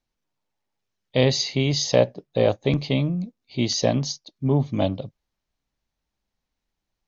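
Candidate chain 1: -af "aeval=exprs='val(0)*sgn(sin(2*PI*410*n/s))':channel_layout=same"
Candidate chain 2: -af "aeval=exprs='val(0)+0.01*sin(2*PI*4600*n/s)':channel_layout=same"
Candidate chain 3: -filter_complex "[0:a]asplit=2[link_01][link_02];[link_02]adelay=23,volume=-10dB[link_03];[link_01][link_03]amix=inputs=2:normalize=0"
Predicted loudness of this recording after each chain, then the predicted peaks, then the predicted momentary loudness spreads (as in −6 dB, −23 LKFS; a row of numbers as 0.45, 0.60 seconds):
−22.5, −23.0, −22.5 LKFS; −4.5, −5.0, −4.0 dBFS; 9, 19, 8 LU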